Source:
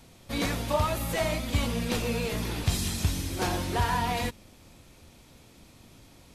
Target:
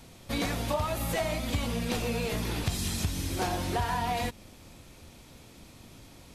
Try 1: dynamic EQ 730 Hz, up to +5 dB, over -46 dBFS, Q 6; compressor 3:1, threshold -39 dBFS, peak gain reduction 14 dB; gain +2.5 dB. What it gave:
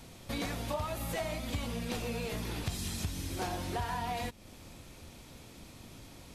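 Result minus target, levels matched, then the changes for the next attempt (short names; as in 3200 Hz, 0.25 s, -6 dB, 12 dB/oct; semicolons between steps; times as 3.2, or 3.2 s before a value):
compressor: peak gain reduction +5.5 dB
change: compressor 3:1, threshold -30.5 dBFS, peak gain reduction 8.5 dB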